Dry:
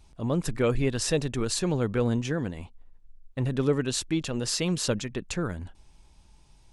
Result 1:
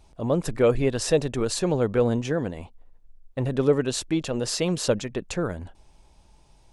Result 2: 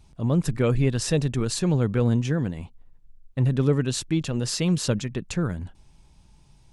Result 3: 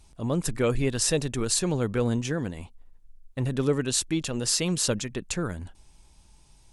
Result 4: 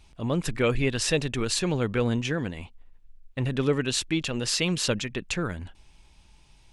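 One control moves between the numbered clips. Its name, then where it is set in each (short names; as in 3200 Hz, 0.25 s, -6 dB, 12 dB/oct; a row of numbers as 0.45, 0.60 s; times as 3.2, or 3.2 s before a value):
bell, frequency: 590, 140, 10000, 2600 Hz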